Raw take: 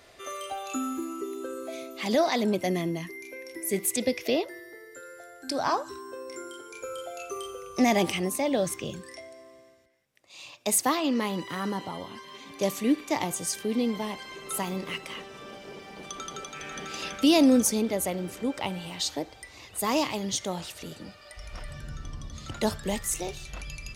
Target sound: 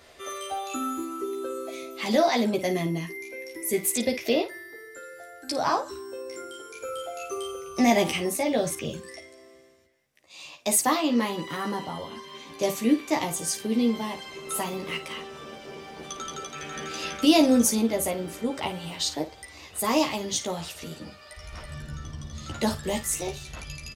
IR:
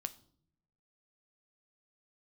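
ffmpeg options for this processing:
-af "aecho=1:1:13|54:0.708|0.282"

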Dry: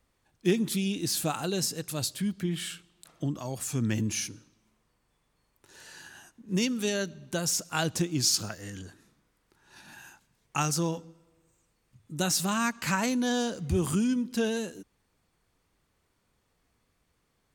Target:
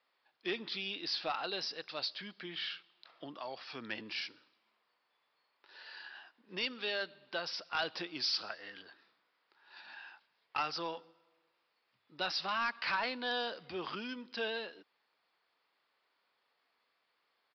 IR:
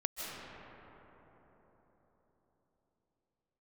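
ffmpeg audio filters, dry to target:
-af "highpass=690,aresample=11025,asoftclip=type=tanh:threshold=-26.5dB,aresample=44100"

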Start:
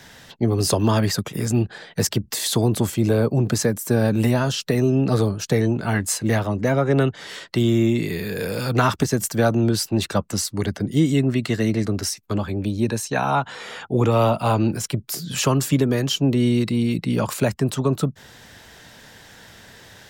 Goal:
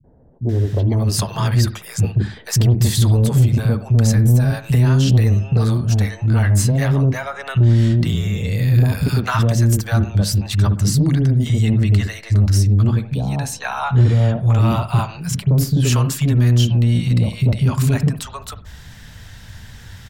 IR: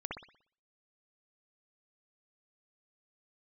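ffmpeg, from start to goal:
-filter_complex "[0:a]asubboost=boost=11:cutoff=120,acrossover=split=170|630[link_01][link_02][link_03];[link_02]adelay=40[link_04];[link_03]adelay=490[link_05];[link_01][link_04][link_05]amix=inputs=3:normalize=0,asplit=2[link_06][link_07];[1:a]atrim=start_sample=2205,atrim=end_sample=6174[link_08];[link_07][link_08]afir=irnorm=-1:irlink=0,volume=-12dB[link_09];[link_06][link_09]amix=inputs=2:normalize=0,acontrast=45,volume=-5.5dB"

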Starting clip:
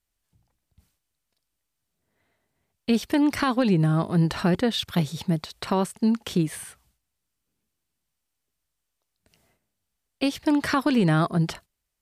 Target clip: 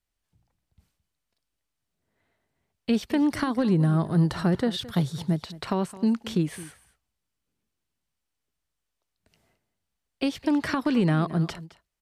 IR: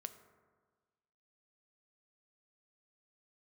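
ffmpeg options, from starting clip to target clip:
-filter_complex "[0:a]highshelf=frequency=7100:gain=-7,acrossover=split=410[link_01][link_02];[link_02]acompressor=threshold=-26dB:ratio=3[link_03];[link_01][link_03]amix=inputs=2:normalize=0,asettb=1/sr,asplit=3[link_04][link_05][link_06];[link_04]atrim=end=3.214[link_07];[link_05]atrim=start=3.21:end=5.33,asetpts=PTS-STARTPTS,afade=type=in:duration=0.004:curve=qsin,afade=type=out:start_time=2.116:duration=0.004:curve=qsin,equalizer=frequency=125:width_type=o:width=0.33:gain=6,equalizer=frequency=2500:width_type=o:width=0.33:gain=-8,equalizer=frequency=10000:width_type=o:width=0.33:gain=6[link_08];[link_06]atrim=start=5.326[link_09];[link_07][link_08]acrossfade=duration=0.004:curve1=hsin:curve2=qsin[link_10];[link_10][link_09]acrossfade=duration=0.004:curve1=qsin:curve2=hsin,aecho=1:1:216:0.133,volume=-1.5dB"

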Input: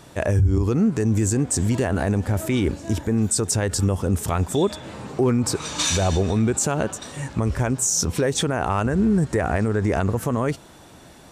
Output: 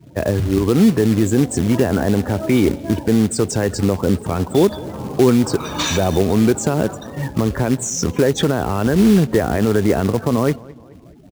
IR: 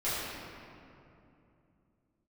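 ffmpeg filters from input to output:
-filter_complex "[0:a]aemphasis=mode=reproduction:type=75kf,afftdn=noise_reduction=35:noise_floor=-39,highshelf=frequency=9500:gain=2,acrossover=split=160|470|2800[link_01][link_02][link_03][link_04];[link_01]acompressor=threshold=-35dB:ratio=4[link_05];[link_03]alimiter=limit=-23.5dB:level=0:latency=1:release=102[link_06];[link_05][link_02][link_06][link_04]amix=inputs=4:normalize=0,acrusher=bits=4:mode=log:mix=0:aa=0.000001,asplit=2[link_07][link_08];[link_08]adelay=214,lowpass=frequency=3500:poles=1,volume=-22dB,asplit=2[link_09][link_10];[link_10]adelay=214,lowpass=frequency=3500:poles=1,volume=0.49,asplit=2[link_11][link_12];[link_12]adelay=214,lowpass=frequency=3500:poles=1,volume=0.49[link_13];[link_07][link_09][link_11][link_13]amix=inputs=4:normalize=0,volume=8dB"

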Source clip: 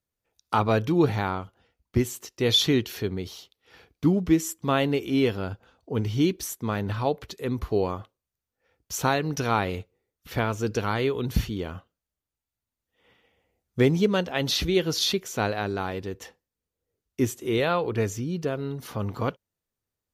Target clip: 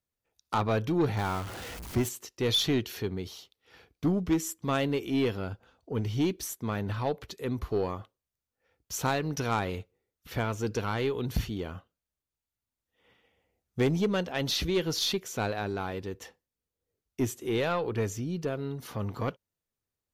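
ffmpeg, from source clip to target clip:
ffmpeg -i in.wav -filter_complex "[0:a]asettb=1/sr,asplit=3[link_01][link_02][link_03];[link_01]atrim=end=1.174[link_04];[link_02]atrim=start=1.17:end=2.09,asetpts=PTS-STARTPTS,afade=type=in:duration=0.004:curve=qsin,afade=type=out:start_time=0.916:duration=0.004:curve=qsin,aeval=exprs='val(0)+0.5*0.0266*sgn(val(0))':channel_layout=same[link_05];[link_03]atrim=start=2.086[link_06];[link_04][link_05]acrossfade=duration=0.004:curve1=hsin:curve2=qsin[link_07];[link_07][link_06]acrossfade=duration=0.004:curve1=qsin:curve2=hsin,aeval=exprs='0.355*(cos(1*acos(clip(val(0)/0.355,-1,1)))-cos(1*PI/2))+0.0447*(cos(3*acos(clip(val(0)/0.355,-1,1)))-cos(3*PI/2))+0.0447*(cos(5*acos(clip(val(0)/0.355,-1,1)))-cos(5*PI/2))+0.00447*(cos(8*acos(clip(val(0)/0.355,-1,1)))-cos(8*PI/2))':channel_layout=same,volume=-5dB" out.wav

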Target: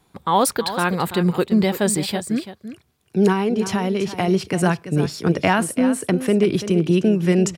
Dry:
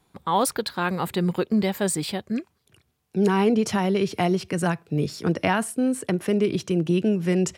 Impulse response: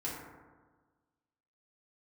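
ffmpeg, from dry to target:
-filter_complex "[0:a]asettb=1/sr,asplit=3[link_01][link_02][link_03];[link_01]atrim=end=3.324[link_04];[link_02]atrim=start=3.32:end=4.28,asetpts=PTS-STARTPTS,afade=type=in:duration=0.004:curve=qsin,afade=type=out:start_time=0.956:duration=0.004:curve=qsin,acompressor=threshold=-24dB:ratio=2.5[link_05];[link_03]atrim=start=4.276[link_06];[link_04][link_05]acrossfade=duration=0.004:curve1=hsin:curve2=qsin[link_07];[link_07][link_06]acrossfade=duration=0.004:curve1=qsin:curve2=hsin,aecho=1:1:337:0.251,volume=4.5dB"

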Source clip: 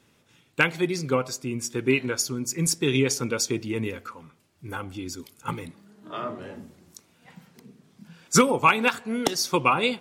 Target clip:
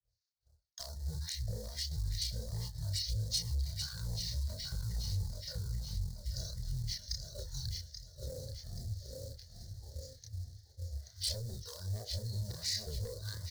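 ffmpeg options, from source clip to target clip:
ffmpeg -i in.wav -filter_complex "[0:a]adynamicequalizer=threshold=0.00794:dfrequency=140:dqfactor=2.1:tfrequency=140:tqfactor=2.1:attack=5:release=100:ratio=0.375:range=3:mode=boostabove:tftype=bell,acrossover=split=2200[link_01][link_02];[link_01]aeval=exprs='val(0)*(1-1/2+1/2*cos(2*PI*2.6*n/s))':channel_layout=same[link_03];[link_02]aeval=exprs='val(0)*(1-1/2-1/2*cos(2*PI*2.6*n/s))':channel_layout=same[link_04];[link_03][link_04]amix=inputs=2:normalize=0,asetrate=25476,aresample=44100,atempo=1.73107,aecho=1:1:616|1232|1848|2464:0.422|0.16|0.0609|0.0231,flanger=delay=17:depth=7.6:speed=2,asetrate=32667,aresample=44100,agate=range=-33dB:threshold=-56dB:ratio=3:detection=peak,acrossover=split=410|4800[link_05][link_06][link_07];[link_05]asoftclip=type=tanh:threshold=-32.5dB[link_08];[link_08][link_06][link_07]amix=inputs=3:normalize=0,acompressor=threshold=-41dB:ratio=6,asplit=2[link_09][link_10];[link_10]acrusher=bits=3:mode=log:mix=0:aa=0.000001,volume=-6.5dB[link_11];[link_09][link_11]amix=inputs=2:normalize=0,volume=34.5dB,asoftclip=hard,volume=-34.5dB,firequalizer=gain_entry='entry(110,0);entry(160,-13);entry(290,-26);entry(490,-8);entry(1100,-29);entry(1800,-9);entry(2500,-27);entry(4300,12);entry(10000,9)':delay=0.05:min_phase=1,volume=6dB" out.wav

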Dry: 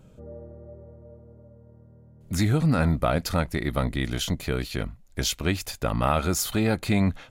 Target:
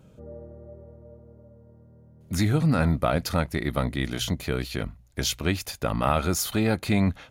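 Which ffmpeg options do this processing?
ffmpeg -i in.wav -af "highpass=46,bandreject=frequency=7600:width=11,bandreject=frequency=59.67:width_type=h:width=4,bandreject=frequency=119.34:width_type=h:width=4" out.wav

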